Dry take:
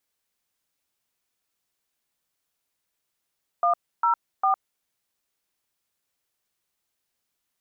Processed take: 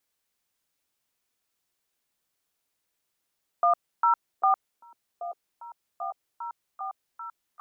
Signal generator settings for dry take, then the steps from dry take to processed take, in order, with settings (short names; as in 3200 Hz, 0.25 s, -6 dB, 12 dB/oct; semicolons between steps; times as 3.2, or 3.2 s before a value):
DTMF "104", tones 0.107 s, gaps 0.295 s, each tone -20.5 dBFS
delay with a stepping band-pass 0.79 s, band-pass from 330 Hz, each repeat 0.7 oct, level -6.5 dB